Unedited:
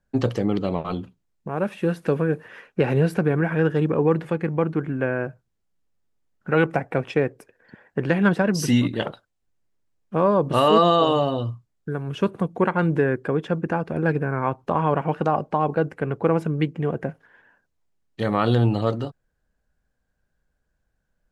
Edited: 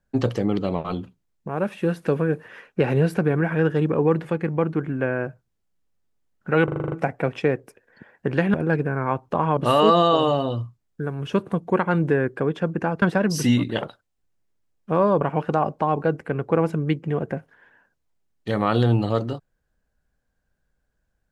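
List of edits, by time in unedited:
6.64 stutter 0.04 s, 8 plays
8.26–10.45 swap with 13.9–14.93

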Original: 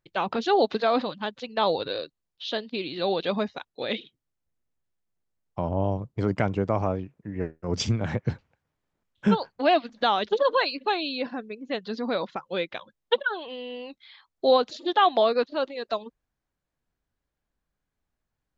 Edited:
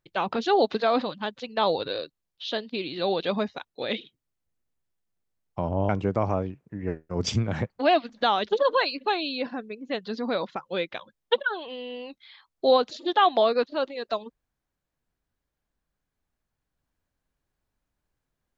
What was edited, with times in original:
5.89–6.42 cut
8.23–9.5 cut

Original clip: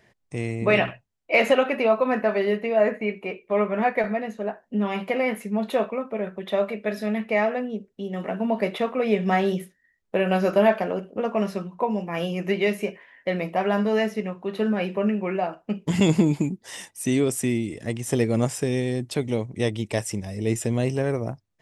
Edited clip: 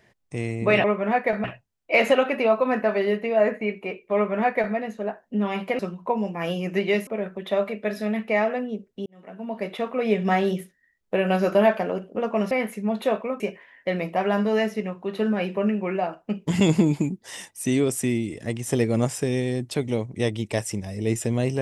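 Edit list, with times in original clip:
3.55–4.15 copy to 0.84
5.19–6.08 swap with 11.52–12.8
8.07–9.13 fade in

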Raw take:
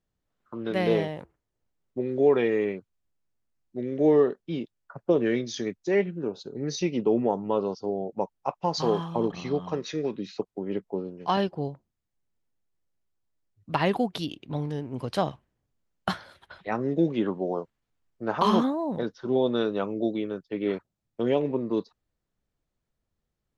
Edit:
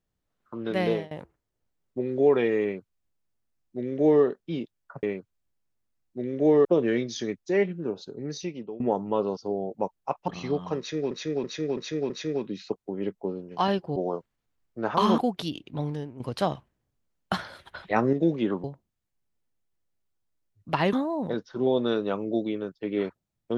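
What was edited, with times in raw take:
0.84–1.11 fade out, to -22 dB
2.62–4.24 copy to 5.03
6.39–7.18 fade out, to -21 dB
8.66–9.29 cut
9.79–10.12 loop, 5 plays
11.65–13.94 swap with 17.4–18.62
14.68–14.96 fade out, to -10.5 dB
16.15–16.89 gain +5.5 dB

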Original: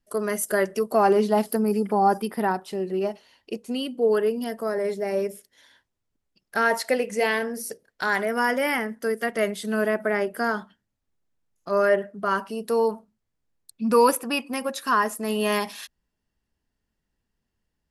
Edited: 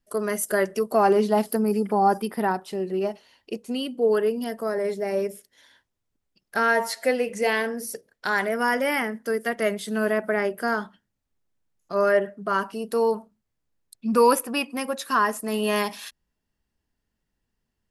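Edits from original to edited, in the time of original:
6.59–7.06 stretch 1.5×

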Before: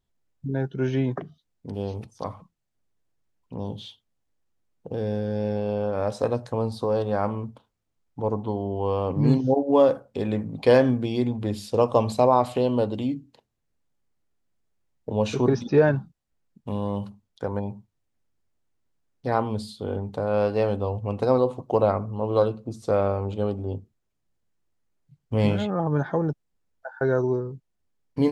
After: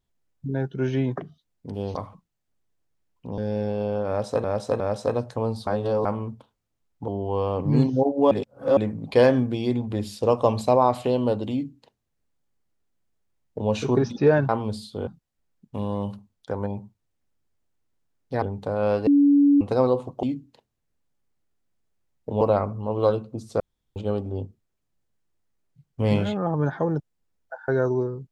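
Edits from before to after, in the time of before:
1.95–2.22 cut
3.65–5.26 cut
5.96–6.32 loop, 3 plays
6.83–7.21 reverse
8.24–8.59 cut
9.82–10.28 reverse
13.03–15.21 copy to 21.74
19.35–19.93 move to 16
20.58–21.12 bleep 285 Hz -13 dBFS
22.93–23.29 room tone

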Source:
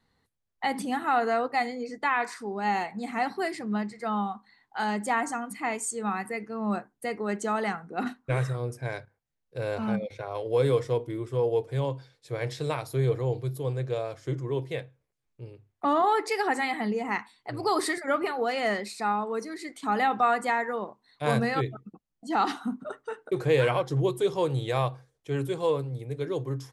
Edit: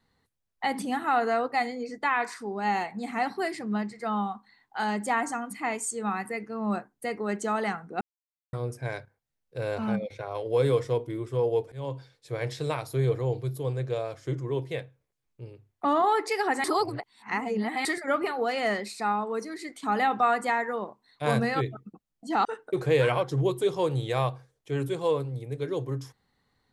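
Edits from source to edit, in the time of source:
8.01–8.53 mute
11.72–11.97 fade in, from -23 dB
16.64–17.85 reverse
22.45–23.04 cut

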